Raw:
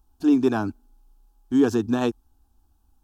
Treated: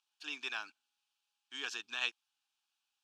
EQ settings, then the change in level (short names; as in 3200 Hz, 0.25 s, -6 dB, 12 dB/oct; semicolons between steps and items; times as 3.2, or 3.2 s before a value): ladder band-pass 3000 Hz, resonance 45%; +11.0 dB